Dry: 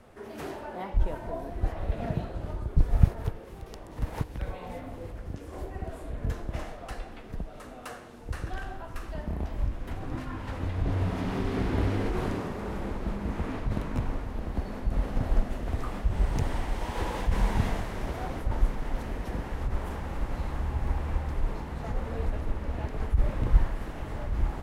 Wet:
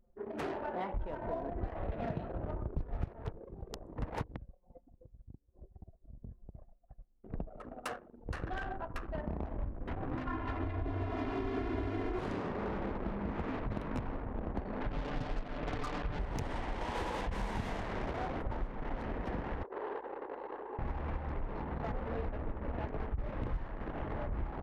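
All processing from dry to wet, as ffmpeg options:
-filter_complex "[0:a]asettb=1/sr,asplit=3[a][b][c];[a]atrim=end=4.374[d];[b]atrim=start=4.37:end=7.24,asetpts=PTS-STARTPTS,afade=t=in:d=0.004:c=qsin,afade=t=out:st=2.866:d=0.004:c=qsin,aemphasis=mode=reproduction:type=75fm,agate=range=-33dB:threshold=-30dB:ratio=3:release=100:detection=peak,acompressor=threshold=-43dB:ratio=4:attack=3.2:release=140:knee=1:detection=peak[e];[c]atrim=start=7.236[f];[d][e]acrossfade=d=0.004:c1=hsin:c2=qsin[g];[g][f]acrossfade=d=0.004:c1=qsin:c2=hsin,asettb=1/sr,asplit=3[h][i][j];[h]atrim=end=10.274[k];[i]atrim=start=10.27:end=12.19,asetpts=PTS-STARTPTS,afade=t=in:d=0.004:c=qsin,afade=t=out:st=1.916:d=0.004:c=qsin,lowpass=f=2.6k:p=1,aecho=1:1:2.9:0.95,atrim=end_sample=84672[l];[j]atrim=start=12.186[m];[k][l]acrossfade=d=0.004:c1=hsin:c2=qsin[n];[n][m]acrossfade=d=0.004:c1=qsin:c2=hsin,asettb=1/sr,asplit=3[o][p][q];[o]atrim=end=14.804[r];[p]atrim=start=14.8:end=16.19,asetpts=PTS-STARTPTS,afade=t=in:d=0.004:c=qsin,afade=t=out:st=1.386:d=0.004:c=qsin,lowpass=3k,aecho=1:1:6.8:0.69,atrim=end_sample=61299,acrusher=bits=5:mix=0:aa=0.5[s];[q]atrim=start=16.186[t];[r][s]acrossfade=d=0.004:c1=hsin:c2=qsin[u];[u][t]acrossfade=d=0.004:c1=qsin:c2=hsin,asettb=1/sr,asplit=3[v][w][x];[v]atrim=end=19.634[y];[w]atrim=start=19.63:end=20.79,asetpts=PTS-STARTPTS,afade=t=in:d=0.004:c=qsin,afade=t=out:st=1.156:d=0.004:c=qsin,highpass=f=360:w=0.5412,highpass=f=360:w=1.3066,equalizer=f=420:t=q:w=4:g=6,equalizer=f=650:t=q:w=4:g=-5,equalizer=f=1.3k:t=q:w=4:g=-4,equalizer=f=2.3k:t=q:w=4:g=-6,equalizer=f=3.4k:t=q:w=4:g=-4,lowpass=f=4.4k:w=0.5412,lowpass=f=4.4k:w=1.3066,aeval=exprs='val(0)+0.000562*(sin(2*PI*50*n/s)+sin(2*PI*2*50*n/s)/2+sin(2*PI*3*50*n/s)/3+sin(2*PI*4*50*n/s)/4+sin(2*PI*5*50*n/s)/5)':c=same[z];[x]atrim=start=20.786[aa];[y][z]acrossfade=d=0.004:c1=hsin:c2=qsin[ab];[ab][aa]acrossfade=d=0.004:c1=qsin:c2=hsin,anlmdn=0.398,lowshelf=f=160:g=-7.5,acompressor=threshold=-36dB:ratio=6,volume=3dB"

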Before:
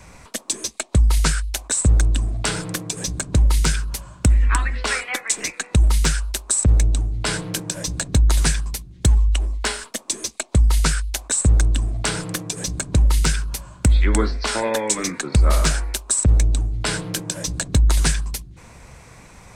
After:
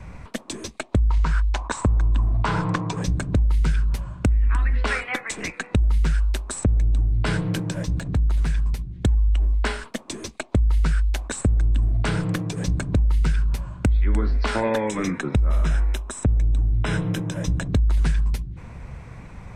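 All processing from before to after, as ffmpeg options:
-filter_complex "[0:a]asettb=1/sr,asplit=3[a][b][c];[a]atrim=end=1.104[d];[b]atrim=start=1.1:end=3.02,asetpts=PTS-STARTPTS,afade=t=in:d=0.004:c=qsin,afade=t=out:st=1.916:d=0.004:c=qsin,lowpass=f=7.7k:w=0.5412,lowpass=f=7.7k:w=1.3066,equalizer=f=1k:w=2.1:g=14.5[e];[c]atrim=start=3.016[f];[d][e]acrossfade=d=0.004:c1=hsin:c2=qsin[g];[g][f]acrossfade=d=0.004:c1=qsin:c2=hsin,asettb=1/sr,asplit=3[h][i][j];[h]atrim=end=7.844[k];[i]atrim=start=7.84:end=8.91,asetpts=PTS-STARTPTS,afade=t=in:d=0.004:c=qsin,afade=t=out:st=1.066:d=0.004:c=qsin,acompressor=threshold=-26dB:ratio=2.5:attack=3.2:release=140:knee=1:detection=peak,asoftclip=type=hard:threshold=-20.5dB[l];[j]atrim=start=8.906[m];[k][l]acrossfade=d=0.004:c1=hsin:c2=qsin[n];[n][m]acrossfade=d=0.004:c1=qsin:c2=hsin,asettb=1/sr,asplit=3[o][p][q];[o]atrim=end=14.844[r];[p]atrim=start=14.84:end=17.69,asetpts=PTS-STARTPTS,afade=t=in:d=0.004:c=qsin,afade=t=out:st=2.846:d=0.004:c=qsin,acompressor=threshold=-19dB:ratio=3:attack=3.2:release=140:knee=1:detection=peak,asuperstop=centerf=4500:order=20:qfactor=6.4[s];[q]atrim=start=17.686[t];[r][s]acrossfade=d=0.004:c1=hsin:c2=qsin[u];[u][t]acrossfade=d=0.004:c1=qsin:c2=hsin,bass=f=250:g=8,treble=f=4k:g=-14,alimiter=limit=-7dB:level=0:latency=1:release=154,acompressor=threshold=-17dB:ratio=4"

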